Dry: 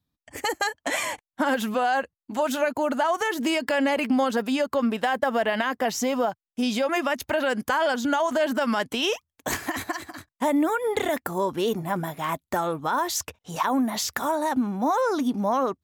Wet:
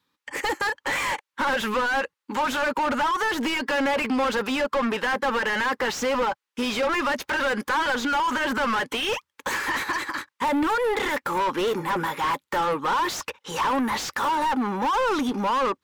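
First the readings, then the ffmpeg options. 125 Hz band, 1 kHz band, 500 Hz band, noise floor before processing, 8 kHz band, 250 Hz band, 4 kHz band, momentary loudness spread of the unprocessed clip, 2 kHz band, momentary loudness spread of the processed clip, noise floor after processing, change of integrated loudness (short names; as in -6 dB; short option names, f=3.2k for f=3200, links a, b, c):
-2.5 dB, +2.5 dB, -1.5 dB, under -85 dBFS, -2.5 dB, -2.5 dB, +2.0 dB, 6 LU, +4.0 dB, 5 LU, -84 dBFS, +0.5 dB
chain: -filter_complex "[0:a]asuperstop=centerf=680:order=8:qfactor=3.1,lowshelf=f=290:g=-12,asplit=2[a][b];[b]highpass=f=720:p=1,volume=31dB,asoftclip=type=tanh:threshold=-10dB[c];[a][c]amix=inputs=2:normalize=0,lowpass=f=1.7k:p=1,volume=-6dB,volume=-5dB"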